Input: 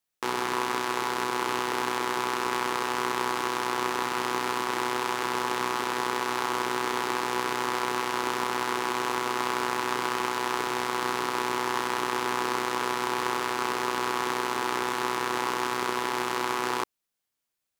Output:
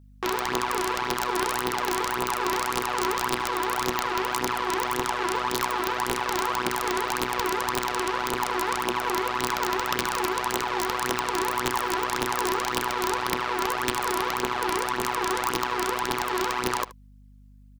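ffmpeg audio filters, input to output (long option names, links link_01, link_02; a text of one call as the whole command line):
ffmpeg -i in.wav -filter_complex "[0:a]acrossover=split=5100[link_01][link_02];[link_02]acompressor=threshold=-55dB:ratio=4:attack=1:release=60[link_03];[link_01][link_03]amix=inputs=2:normalize=0,aphaser=in_gain=1:out_gain=1:delay=3.1:decay=0.6:speed=1.8:type=triangular,aeval=exprs='(mod(4.47*val(0)+1,2)-1)/4.47':channel_layout=same,aeval=exprs='val(0)+0.00316*(sin(2*PI*50*n/s)+sin(2*PI*2*50*n/s)/2+sin(2*PI*3*50*n/s)/3+sin(2*PI*4*50*n/s)/4+sin(2*PI*5*50*n/s)/5)':channel_layout=same,asplit=2[link_04][link_05];[link_05]aecho=0:1:76:0.119[link_06];[link_04][link_06]amix=inputs=2:normalize=0" out.wav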